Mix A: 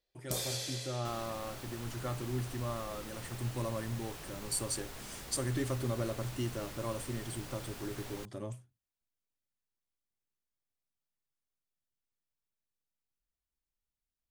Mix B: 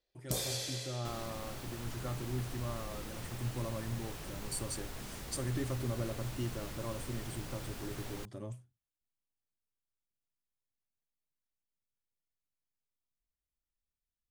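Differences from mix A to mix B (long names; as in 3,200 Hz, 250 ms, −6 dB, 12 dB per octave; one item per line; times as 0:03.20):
speech −5.0 dB
master: add low-shelf EQ 290 Hz +5 dB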